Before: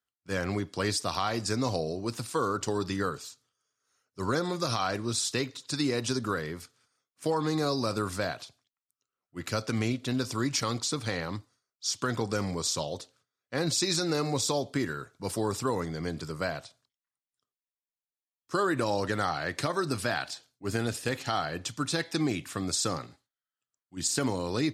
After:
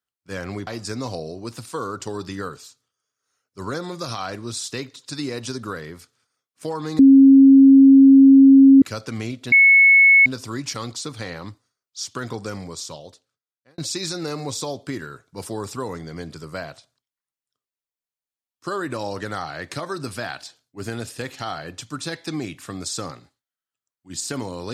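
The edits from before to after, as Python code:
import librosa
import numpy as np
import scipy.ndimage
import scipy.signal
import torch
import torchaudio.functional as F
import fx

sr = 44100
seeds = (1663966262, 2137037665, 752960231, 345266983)

y = fx.edit(x, sr, fx.cut(start_s=0.67, length_s=0.61),
    fx.bleep(start_s=7.6, length_s=1.83, hz=271.0, db=-6.0),
    fx.insert_tone(at_s=10.13, length_s=0.74, hz=2200.0, db=-8.5),
    fx.fade_out_span(start_s=12.24, length_s=1.41), tone=tone)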